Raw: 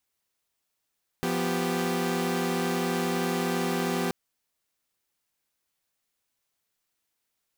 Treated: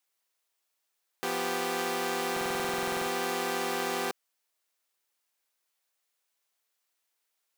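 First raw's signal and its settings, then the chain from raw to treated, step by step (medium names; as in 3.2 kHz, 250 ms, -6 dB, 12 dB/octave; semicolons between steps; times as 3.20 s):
chord F3/B3/G4 saw, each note -27.5 dBFS 2.88 s
high-pass 430 Hz 12 dB/octave; buffer glitch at 2.32 s, samples 2048, times 15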